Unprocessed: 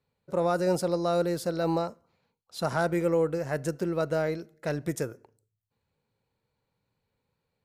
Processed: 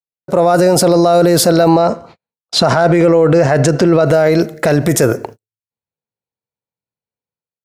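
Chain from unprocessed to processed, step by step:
parametric band 680 Hz +5.5 dB 0.26 octaves
noise gate −59 dBFS, range −47 dB
high-pass filter 100 Hz 6 dB per octave
automatic gain control gain up to 14 dB
0:01.68–0:04.06: low-pass filter 6,000 Hz 12 dB per octave
boost into a limiter +20 dB
level −1.5 dB

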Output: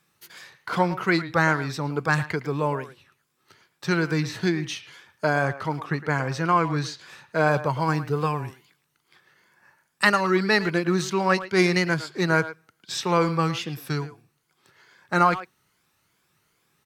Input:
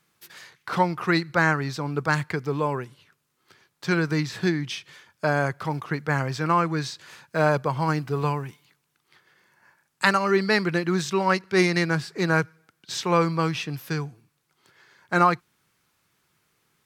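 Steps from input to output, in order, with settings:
rippled gain that drifts along the octave scale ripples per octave 1.8, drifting +2.4 Hz, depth 6 dB
0:05.45–0:07.47: high-shelf EQ 11,000 Hz −8 dB
far-end echo of a speakerphone 110 ms, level −13 dB
wow of a warped record 33 1/3 rpm, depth 100 cents

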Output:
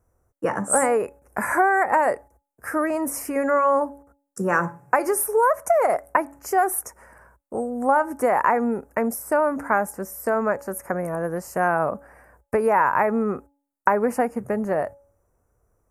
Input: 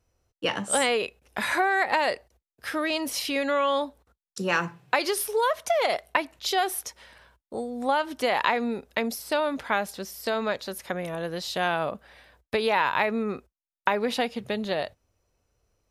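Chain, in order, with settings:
Chebyshev band-stop filter 1,400–8,500 Hz, order 2
hum removal 281.9 Hz, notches 3
level +6 dB

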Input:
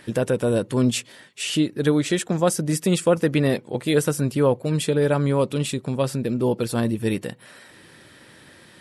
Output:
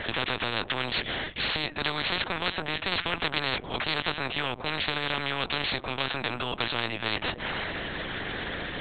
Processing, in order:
linear-prediction vocoder at 8 kHz pitch kept
every bin compressed towards the loudest bin 10 to 1
level −5.5 dB

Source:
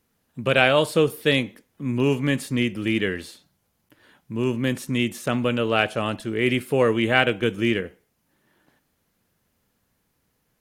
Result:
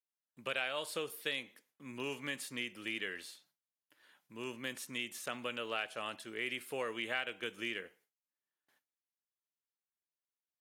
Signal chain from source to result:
noise gate with hold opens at −50 dBFS
high-pass filter 1,300 Hz 6 dB per octave
downward compressor 3 to 1, threshold −27 dBFS, peak gain reduction 9.5 dB
level −7.5 dB

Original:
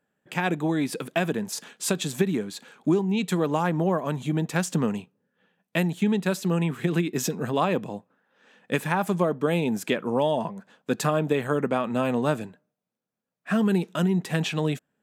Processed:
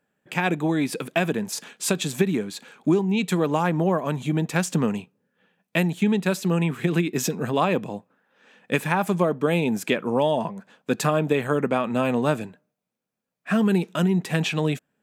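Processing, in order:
parametric band 2,400 Hz +3.5 dB 0.27 octaves
level +2 dB

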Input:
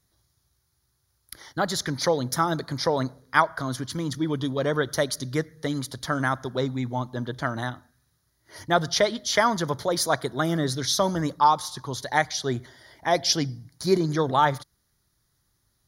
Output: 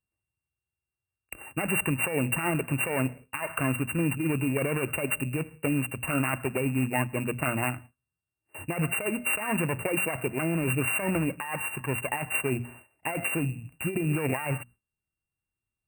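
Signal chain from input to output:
samples sorted by size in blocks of 16 samples
mains-hum notches 60/120/180/240 Hz
noise gate with hold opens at −37 dBFS
compressor whose output falls as the input rises −27 dBFS, ratio −1
linear-phase brick-wall band-stop 2,800–8,000 Hz

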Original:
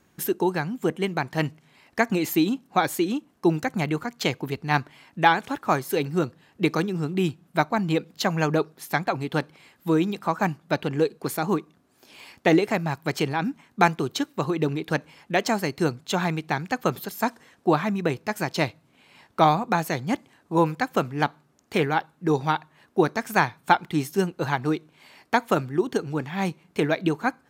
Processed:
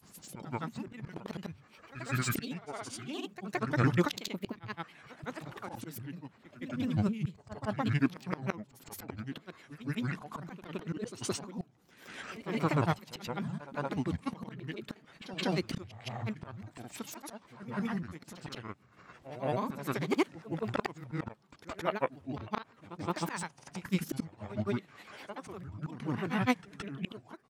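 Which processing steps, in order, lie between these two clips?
dynamic equaliser 3,100 Hz, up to +3 dB, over −40 dBFS, Q 0.7
volume swells 737 ms
formants moved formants −5 semitones
granular cloud, pitch spread up and down by 7 semitones
echo ahead of the sound 169 ms −13 dB
level +4.5 dB

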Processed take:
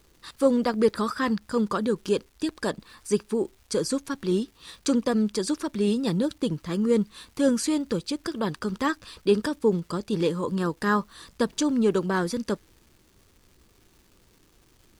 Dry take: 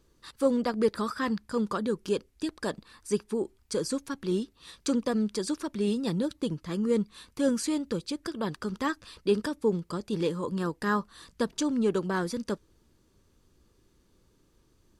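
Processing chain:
surface crackle 520 per second −53 dBFS
level +4 dB

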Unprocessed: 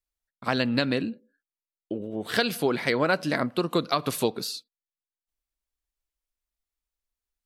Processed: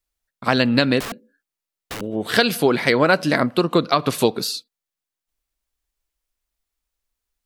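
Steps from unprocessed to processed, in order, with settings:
0:01.00–0:02.01: wrap-around overflow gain 32.5 dB
0:03.62–0:04.18: high-shelf EQ 5,600 Hz → 8,700 Hz −10 dB
level +7.5 dB

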